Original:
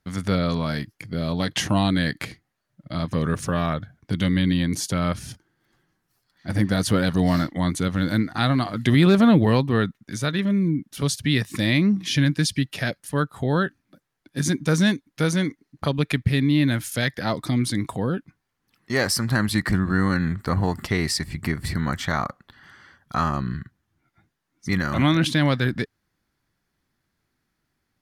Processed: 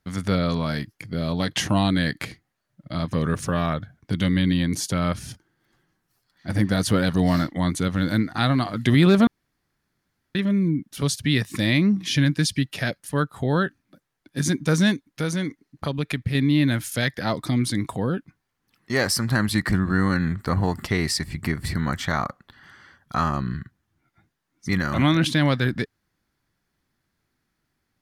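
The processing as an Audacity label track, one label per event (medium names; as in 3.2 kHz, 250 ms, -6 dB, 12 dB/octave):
9.270000	10.350000	room tone
15.080000	16.350000	compression 1.5:1, threshold -27 dBFS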